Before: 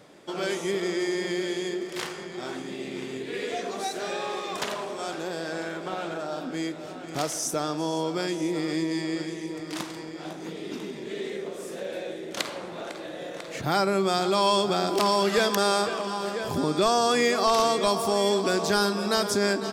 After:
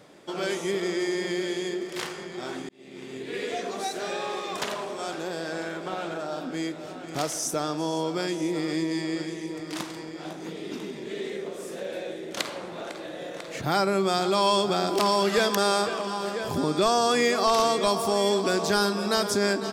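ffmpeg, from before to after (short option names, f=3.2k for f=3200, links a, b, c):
-filter_complex "[0:a]asplit=2[a][b];[a]atrim=end=2.69,asetpts=PTS-STARTPTS,afade=t=out:st=2.686:d=0.004:c=hsin[c];[b]atrim=start=2.69,asetpts=PTS-STARTPTS,afade=t=in:d=0.66[d];[c][d]concat=n=2:v=0:a=1"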